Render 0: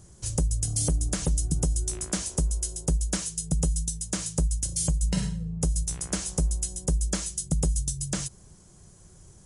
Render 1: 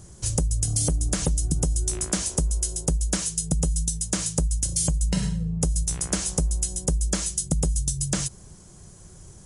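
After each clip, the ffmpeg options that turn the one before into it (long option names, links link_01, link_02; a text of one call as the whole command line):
ffmpeg -i in.wav -af "acompressor=threshold=-25dB:ratio=6,volume=5.5dB" out.wav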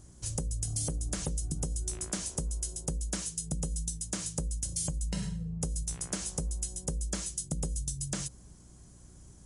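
ffmpeg -i in.wav -af "bandreject=frequency=60:width_type=h:width=6,bandreject=frequency=120:width_type=h:width=6,bandreject=frequency=180:width_type=h:width=6,bandreject=frequency=240:width_type=h:width=6,bandreject=frequency=300:width_type=h:width=6,bandreject=frequency=360:width_type=h:width=6,bandreject=frequency=420:width_type=h:width=6,bandreject=frequency=480:width_type=h:width=6,bandreject=frequency=540:width_type=h:width=6,aeval=exprs='val(0)+0.00501*(sin(2*PI*60*n/s)+sin(2*PI*2*60*n/s)/2+sin(2*PI*3*60*n/s)/3+sin(2*PI*4*60*n/s)/4+sin(2*PI*5*60*n/s)/5)':channel_layout=same,volume=-9dB" out.wav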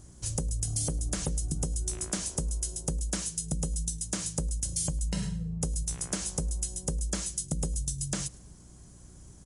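ffmpeg -i in.wav -af "aecho=1:1:106|212:0.0668|0.0254,volume=2.5dB" out.wav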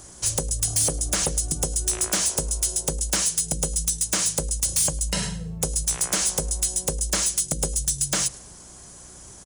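ffmpeg -i in.wav -filter_complex "[0:a]acrossover=split=420[link_01][link_02];[link_01]asplit=2[link_03][link_04];[link_04]adelay=38,volume=-11dB[link_05];[link_03][link_05]amix=inputs=2:normalize=0[link_06];[link_02]aeval=exprs='0.15*sin(PI/2*3.16*val(0)/0.15)':channel_layout=same[link_07];[link_06][link_07]amix=inputs=2:normalize=0" out.wav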